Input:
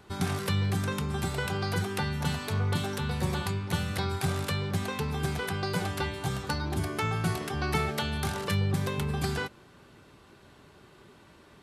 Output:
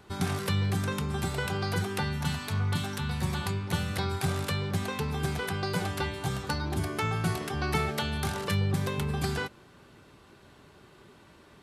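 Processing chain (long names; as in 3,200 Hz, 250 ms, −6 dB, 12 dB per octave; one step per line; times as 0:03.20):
0:02.18–0:03.43: parametric band 480 Hz −8.5 dB 0.89 octaves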